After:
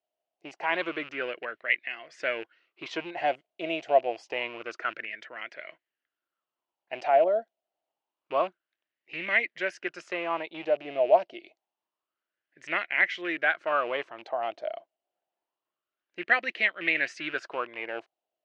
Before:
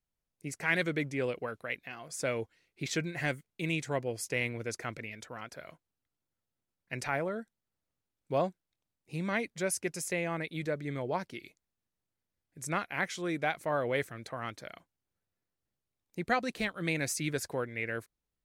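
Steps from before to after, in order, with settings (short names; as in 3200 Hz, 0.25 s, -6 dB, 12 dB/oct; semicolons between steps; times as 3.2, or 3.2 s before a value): rattling part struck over -41 dBFS, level -35 dBFS; speaker cabinet 330–5000 Hz, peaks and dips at 340 Hz +8 dB, 630 Hz +8 dB, 2900 Hz +10 dB; LFO bell 0.27 Hz 660–2000 Hz +18 dB; gain -5 dB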